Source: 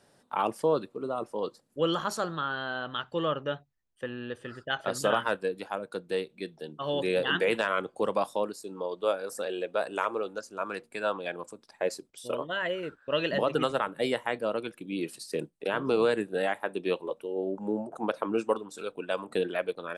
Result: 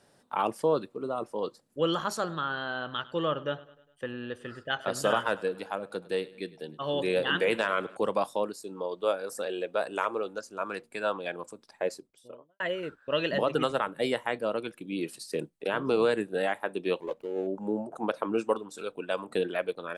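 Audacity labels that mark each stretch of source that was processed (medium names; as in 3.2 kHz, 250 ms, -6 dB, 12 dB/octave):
2.170000	7.970000	feedback delay 102 ms, feedback 54%, level -20 dB
11.680000	12.600000	studio fade out
17.000000	17.470000	median filter over 25 samples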